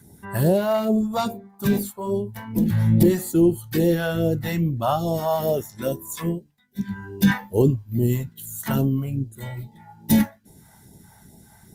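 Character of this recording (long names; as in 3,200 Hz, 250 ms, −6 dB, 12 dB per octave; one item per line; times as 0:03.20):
phaser sweep stages 2, 2.4 Hz, lowest notch 310–1,300 Hz
Opus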